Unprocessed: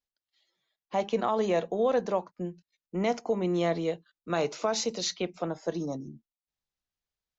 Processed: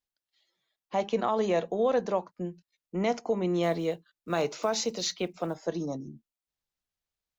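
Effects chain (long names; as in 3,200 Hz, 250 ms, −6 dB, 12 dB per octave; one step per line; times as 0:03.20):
0:03.63–0:05.66: one scale factor per block 7 bits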